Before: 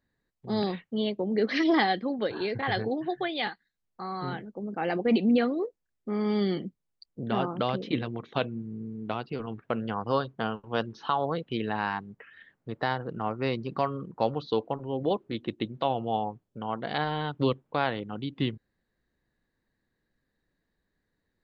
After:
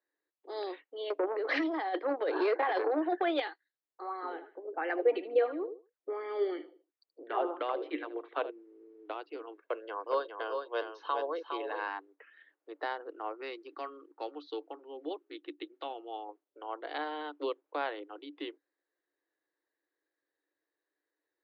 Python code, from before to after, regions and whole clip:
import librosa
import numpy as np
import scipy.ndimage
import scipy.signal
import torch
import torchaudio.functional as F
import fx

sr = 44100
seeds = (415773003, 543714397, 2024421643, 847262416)

y = fx.chain(x, sr, fx.peak_eq(hz=800.0, db=12.0, octaves=2.6),
    fx.over_compress(threshold_db=-22.0, ratio=-1.0),
    fx.transformer_sat(knee_hz=660.0), at=(1.1, 3.4))
y = fx.chain(y, sr, fx.air_absorb(metres=210.0),
    fx.echo_feedback(ms=77, feedback_pct=28, wet_db=-13.5),
    fx.bell_lfo(hz=2.9, low_hz=420.0, high_hz=2100.0, db=10), at=(4.01, 8.51))
y = fx.chain(y, sr, fx.comb(ms=1.9, depth=0.41),
    fx.echo_single(ms=410, db=-6.0), at=(9.55, 11.88))
y = fx.chain(y, sr, fx.peak_eq(hz=580.0, db=-8.5, octaves=1.0),
    fx.notch(hz=1000.0, q=8.1), at=(13.41, 16.29))
y = scipy.signal.sosfilt(scipy.signal.cheby1(8, 1.0, 290.0, 'highpass', fs=sr, output='sos'), y)
y = fx.high_shelf(y, sr, hz=4000.0, db=-7.5)
y = y * 10.0 ** (-5.5 / 20.0)